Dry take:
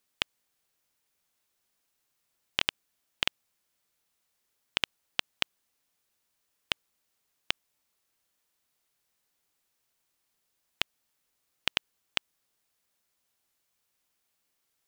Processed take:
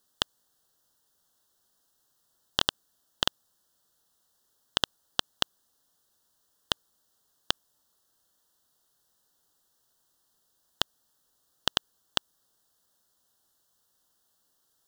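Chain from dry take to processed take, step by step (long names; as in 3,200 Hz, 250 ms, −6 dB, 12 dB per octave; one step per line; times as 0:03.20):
Butterworth band-reject 2,300 Hz, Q 1.6
level +6 dB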